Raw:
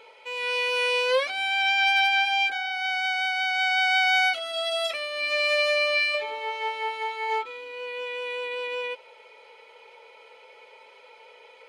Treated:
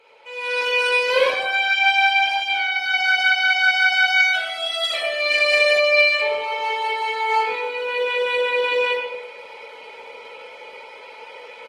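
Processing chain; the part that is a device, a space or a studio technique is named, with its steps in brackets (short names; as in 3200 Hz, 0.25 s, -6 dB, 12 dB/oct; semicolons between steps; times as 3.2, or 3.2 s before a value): HPF 250 Hz 12 dB/oct; speakerphone in a meeting room (reverb RT60 0.85 s, pre-delay 26 ms, DRR -4.5 dB; speakerphone echo 0.16 s, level -18 dB; AGC gain up to 10.5 dB; gain -4.5 dB; Opus 16 kbps 48000 Hz)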